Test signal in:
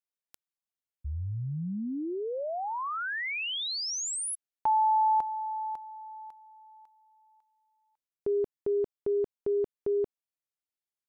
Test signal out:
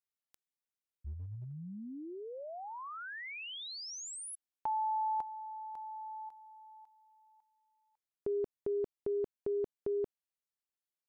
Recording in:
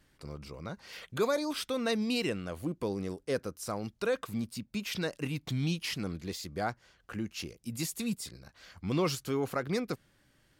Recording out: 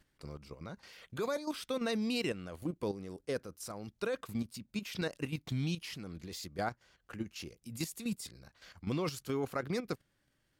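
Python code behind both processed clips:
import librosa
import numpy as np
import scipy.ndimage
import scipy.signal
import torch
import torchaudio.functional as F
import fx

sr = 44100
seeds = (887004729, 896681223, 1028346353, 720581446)

y = fx.level_steps(x, sr, step_db=11)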